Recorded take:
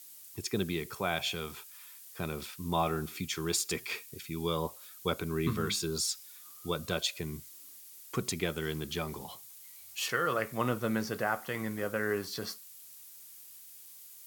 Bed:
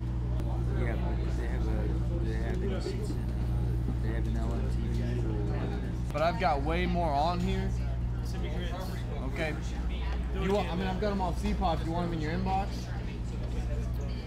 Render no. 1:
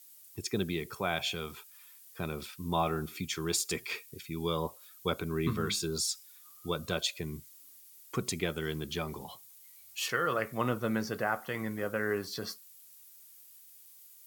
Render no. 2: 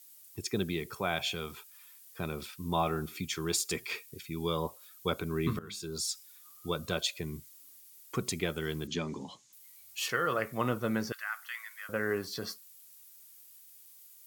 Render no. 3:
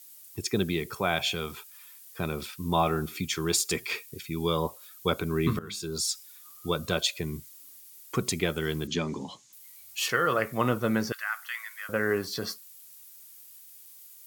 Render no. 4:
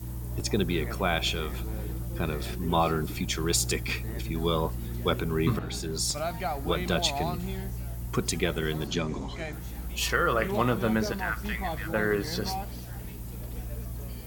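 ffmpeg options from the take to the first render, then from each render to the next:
ffmpeg -i in.wav -af "afftdn=noise_reduction=6:noise_floor=-52" out.wav
ffmpeg -i in.wav -filter_complex "[0:a]asettb=1/sr,asplit=3[link_01][link_02][link_03];[link_01]atrim=end=8.874[link_04];[link_02]atrim=start=8.87:end=9.53,asetpts=PTS-STARTPTS,afade=type=in:duration=0.004:curve=qsin,afade=type=out:start_time=0.656:duration=0.004:curve=qsin,highpass=110,equalizer=frequency=190:width_type=q:width=4:gain=5,equalizer=frequency=270:width_type=q:width=4:gain=10,equalizer=frequency=730:width_type=q:width=4:gain=-7,equalizer=frequency=1300:width_type=q:width=4:gain=-4,equalizer=frequency=6700:width_type=q:width=4:gain=7,lowpass=frequency=7000:width=0.5412,lowpass=frequency=7000:width=1.3066[link_05];[link_03]atrim=start=9.526[link_06];[link_04][link_05]acrossfade=duration=0.004:curve1=hsin:curve2=qsin[link_07];[link_07][link_06]acrossfade=duration=0.004:curve1=qsin:curve2=hsin,asettb=1/sr,asplit=3[link_08][link_09][link_10];[link_08]atrim=end=11.124[link_11];[link_09]atrim=start=11.12:end=11.89,asetpts=PTS-STARTPTS,afade=type=in:duration=0.004:curve=qsin,afade=type=out:start_time=0.766:duration=0.004:curve=qsin,highpass=frequency=1400:width=0.5412,highpass=frequency=1400:width=1.3066[link_12];[link_10]atrim=start=11.886[link_13];[link_11][link_12]acrossfade=duration=0.004:curve1=hsin:curve2=qsin[link_14];[link_14][link_13]acrossfade=duration=0.004:curve1=qsin:curve2=hsin,asplit=2[link_15][link_16];[link_15]atrim=end=5.59,asetpts=PTS-STARTPTS,afade=type=out:start_time=5.586:duration=0.004:curve=hsin:silence=0.112202[link_17];[link_16]atrim=start=5.59,asetpts=PTS-STARTPTS,afade=type=in:duration=0.61:silence=0.112202[link_18];[link_17][link_18]concat=n=2:v=0:a=1" out.wav
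ffmpeg -i in.wav -af "volume=5dB" out.wav
ffmpeg -i in.wav -i bed.wav -filter_complex "[1:a]volume=-4dB[link_01];[0:a][link_01]amix=inputs=2:normalize=0" out.wav

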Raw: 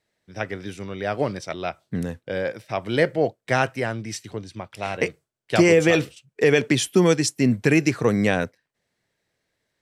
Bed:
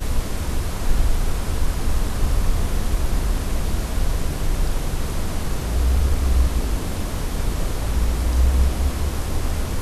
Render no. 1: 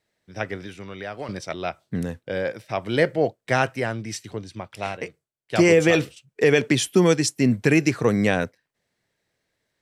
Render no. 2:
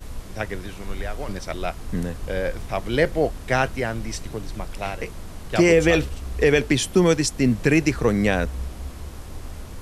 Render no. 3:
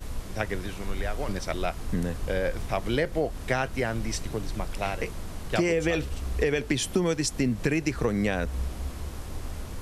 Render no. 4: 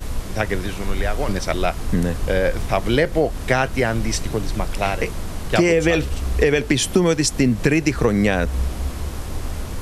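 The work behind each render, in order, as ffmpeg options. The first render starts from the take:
ffmpeg -i in.wav -filter_complex "[0:a]asettb=1/sr,asplit=3[link_01][link_02][link_03];[link_01]atrim=end=0.624[link_04];[link_02]atrim=start=0.62:end=1.29,asetpts=PTS-STARTPTS,afade=type=in:duration=0.004:curve=qsin,afade=type=out:start_time=0.666:duration=0.004:curve=qsin,acrossover=split=850|3700[link_05][link_06][link_07];[link_05]acompressor=threshold=-35dB:ratio=4[link_08];[link_06]acompressor=threshold=-35dB:ratio=4[link_09];[link_07]acompressor=threshold=-54dB:ratio=4[link_10];[link_08][link_09][link_10]amix=inputs=3:normalize=0[link_11];[link_03]atrim=start=1.286[link_12];[link_04][link_11]acrossfade=duration=0.004:curve1=hsin:curve2=qsin[link_13];[link_13][link_12]acrossfade=duration=0.004:curve1=qsin:curve2=hsin,asplit=3[link_14][link_15][link_16];[link_14]atrim=end=5.01,asetpts=PTS-STARTPTS,afade=type=out:start_time=4.87:duration=0.14:silence=0.354813[link_17];[link_15]atrim=start=5.01:end=5.49,asetpts=PTS-STARTPTS,volume=-9dB[link_18];[link_16]atrim=start=5.49,asetpts=PTS-STARTPTS,afade=type=in:duration=0.14:silence=0.354813[link_19];[link_17][link_18][link_19]concat=n=3:v=0:a=1" out.wav
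ffmpeg -i in.wav -i bed.wav -filter_complex "[1:a]volume=-12.5dB[link_01];[0:a][link_01]amix=inputs=2:normalize=0" out.wav
ffmpeg -i in.wav -af "acompressor=threshold=-22dB:ratio=5" out.wav
ffmpeg -i in.wav -af "volume=8.5dB,alimiter=limit=-3dB:level=0:latency=1" out.wav

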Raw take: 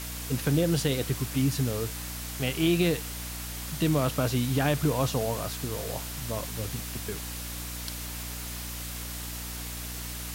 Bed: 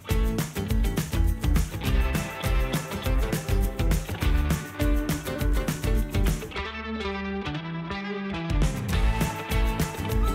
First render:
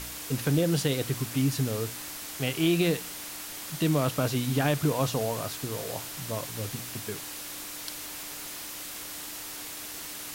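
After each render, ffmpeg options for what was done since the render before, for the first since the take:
ffmpeg -i in.wav -af "bandreject=frequency=60:width_type=h:width=4,bandreject=frequency=120:width_type=h:width=4,bandreject=frequency=180:width_type=h:width=4,bandreject=frequency=240:width_type=h:width=4" out.wav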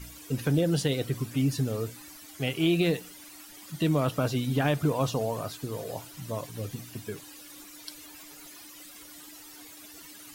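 ffmpeg -i in.wav -af "afftdn=noise_reduction=14:noise_floor=-40" out.wav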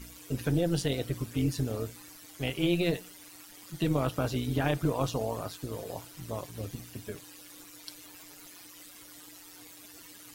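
ffmpeg -i in.wav -af "tremolo=f=180:d=0.621" out.wav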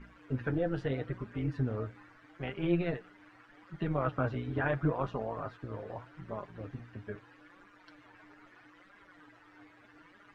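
ffmpeg -i in.wav -af "flanger=delay=4.9:depth=4.9:regen=36:speed=0.78:shape=sinusoidal,lowpass=frequency=1600:width_type=q:width=2.1" out.wav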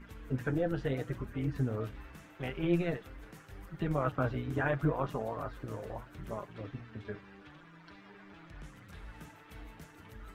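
ffmpeg -i in.wav -i bed.wav -filter_complex "[1:a]volume=-25.5dB[link_01];[0:a][link_01]amix=inputs=2:normalize=0" out.wav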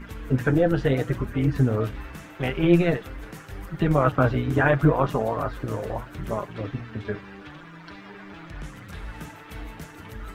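ffmpeg -i in.wav -af "volume=11.5dB" out.wav

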